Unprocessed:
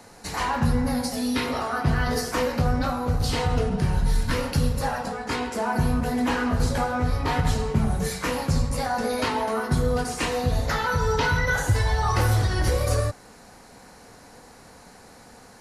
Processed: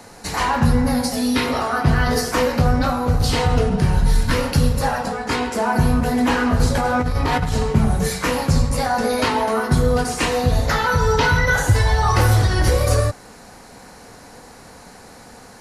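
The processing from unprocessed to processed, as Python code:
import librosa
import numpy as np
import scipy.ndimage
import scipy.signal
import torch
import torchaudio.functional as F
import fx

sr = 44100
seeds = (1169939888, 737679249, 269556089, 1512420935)

y = fx.over_compress(x, sr, threshold_db=-25.0, ratio=-1.0, at=(6.75, 7.63))
y = F.gain(torch.from_numpy(y), 6.0).numpy()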